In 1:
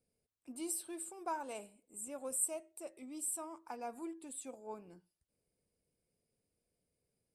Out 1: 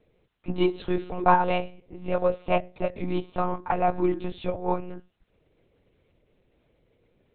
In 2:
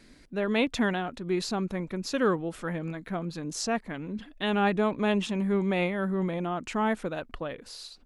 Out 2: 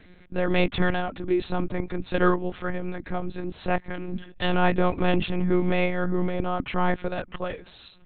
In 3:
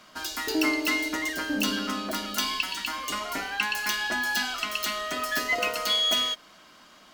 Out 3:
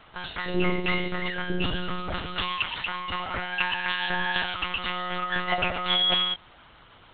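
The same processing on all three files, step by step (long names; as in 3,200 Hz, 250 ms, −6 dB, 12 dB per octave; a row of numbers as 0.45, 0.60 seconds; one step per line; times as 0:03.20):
one-pitch LPC vocoder at 8 kHz 180 Hz
loudness normalisation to −27 LKFS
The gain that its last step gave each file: +20.5, +4.5, +1.5 decibels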